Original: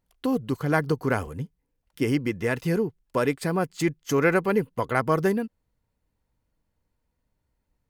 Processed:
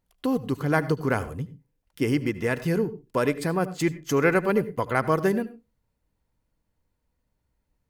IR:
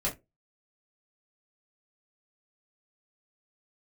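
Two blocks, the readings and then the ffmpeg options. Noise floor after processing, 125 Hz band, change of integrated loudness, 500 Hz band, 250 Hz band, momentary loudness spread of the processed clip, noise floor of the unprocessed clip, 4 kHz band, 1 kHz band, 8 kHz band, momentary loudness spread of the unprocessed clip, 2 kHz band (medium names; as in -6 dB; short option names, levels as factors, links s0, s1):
-77 dBFS, 0.0 dB, 0.0 dB, 0.0 dB, 0.0 dB, 7 LU, -78 dBFS, 0.0 dB, 0.0 dB, 0.0 dB, 7 LU, 0.0 dB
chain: -filter_complex "[0:a]asplit=2[s0][s1];[1:a]atrim=start_sample=2205,adelay=74[s2];[s1][s2]afir=irnorm=-1:irlink=0,volume=0.0841[s3];[s0][s3]amix=inputs=2:normalize=0"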